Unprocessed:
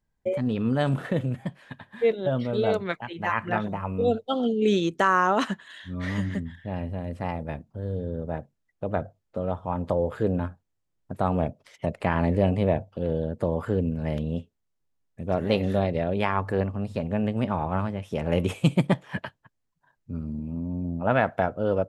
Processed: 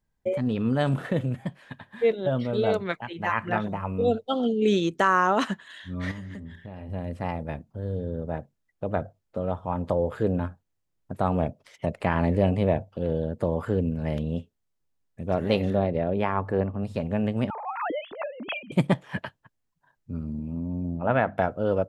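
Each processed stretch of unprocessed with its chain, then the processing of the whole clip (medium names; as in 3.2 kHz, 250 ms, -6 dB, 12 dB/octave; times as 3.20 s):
6.11–6.90 s: de-hum 57.64 Hz, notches 22 + compression, threshold -35 dBFS
15.70–16.83 s: high-pass 530 Hz 6 dB/octave + tilt EQ -4 dB/octave
17.50–18.72 s: formants replaced by sine waves + compressor with a negative ratio -35 dBFS
20.95–21.38 s: distance through air 210 m + hum notches 50/100/150/200/250/300 Hz + tape noise reduction on one side only encoder only
whole clip: none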